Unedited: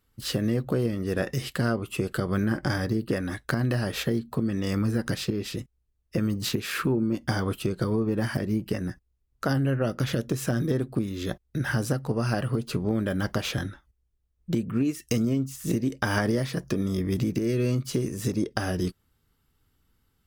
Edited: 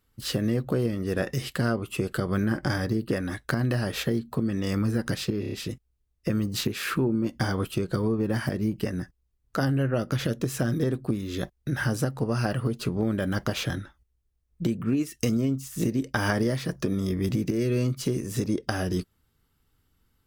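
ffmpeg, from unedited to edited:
-filter_complex "[0:a]asplit=5[a][b][c][d][e];[a]atrim=end=5.432[f];[b]atrim=start=5.398:end=5.432[g];[c]atrim=start=5.398:end=5.432[h];[d]atrim=start=5.398:end=5.432[i];[e]atrim=start=5.398[j];[f][g]acrossfade=d=0.004:c1=hsin:c2=hsin[k];[k][h]acrossfade=d=0.004:c1=hsin:c2=hsin[l];[l][i]acrossfade=d=0.004:c1=hsin:c2=hsin[m];[m][j]acrossfade=d=0.004:c1=hsin:c2=hsin"

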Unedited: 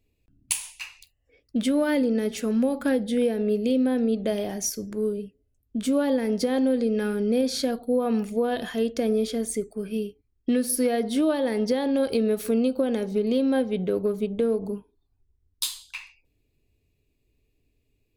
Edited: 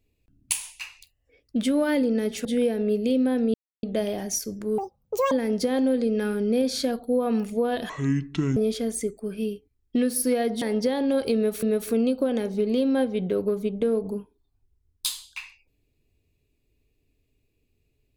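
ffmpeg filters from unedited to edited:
-filter_complex "[0:a]asplit=9[a][b][c][d][e][f][g][h][i];[a]atrim=end=2.452[j];[b]atrim=start=3.048:end=4.14,asetpts=PTS-STARTPTS,afade=t=out:st=1.088:d=0.004:c=hsin,apad=pad_dur=0.29[k];[c]atrim=start=4.14:end=5.094,asetpts=PTS-STARTPTS,afade=t=in:d=0.004:c=hsin[l];[d]atrim=start=5.09:end=6.11,asetpts=PTS-STARTPTS,asetrate=84231,aresample=44100[m];[e]atrim=start=6.106:end=8.694[n];[f]atrim=start=8.69:end=9.1,asetpts=PTS-STARTPTS,asetrate=26901,aresample=44100[o];[g]atrim=start=9.096:end=11.152[p];[h]atrim=start=11.468:end=12.482[q];[i]atrim=start=12.198[r];[k][l]concat=n=2:v=0:a=1[s];[j][s]acrossfade=d=0.004:c1=hsin:c2=hsin[t];[t][m]acrossfade=d=0.004:c1=hsin:c2=hsin[u];[u][n]acrossfade=d=0.004:c1=hsin:c2=hsin[v];[v][o]acrossfade=d=0.004:c1=hsin:c2=hsin[w];[w][p]acrossfade=d=0.004:c1=hsin:c2=hsin[x];[x][q]acrossfade=d=0.004:c1=hsin:c2=hsin[y];[y][r]acrossfade=d=0.004:c1=hsin:c2=hsin"

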